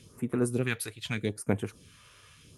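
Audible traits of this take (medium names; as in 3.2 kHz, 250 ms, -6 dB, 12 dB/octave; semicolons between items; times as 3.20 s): phasing stages 2, 0.81 Hz, lowest notch 210–4400 Hz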